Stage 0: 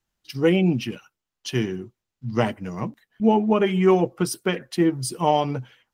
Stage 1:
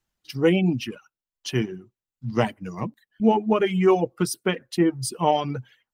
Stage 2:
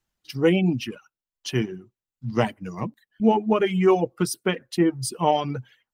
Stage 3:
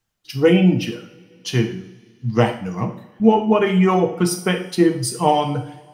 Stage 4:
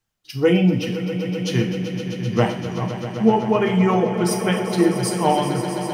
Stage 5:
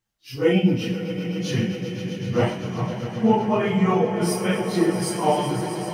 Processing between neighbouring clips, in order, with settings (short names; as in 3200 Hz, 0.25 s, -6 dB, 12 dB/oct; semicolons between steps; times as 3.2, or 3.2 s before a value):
reverb removal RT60 0.75 s
nothing audible
two-slope reverb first 0.53 s, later 2.6 s, from -22 dB, DRR 3.5 dB; gain +3.5 dB
swelling echo 0.129 s, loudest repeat 5, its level -13.5 dB; gain -2.5 dB
phase scrambler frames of 0.1 s; gain -2.5 dB